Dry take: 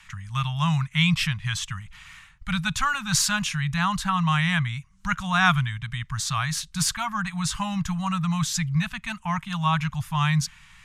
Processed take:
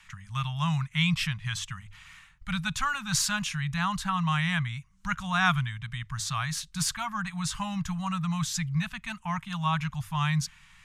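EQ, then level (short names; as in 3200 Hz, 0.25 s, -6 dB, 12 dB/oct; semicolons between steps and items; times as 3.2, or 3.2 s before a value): notches 50/100 Hz; -4.5 dB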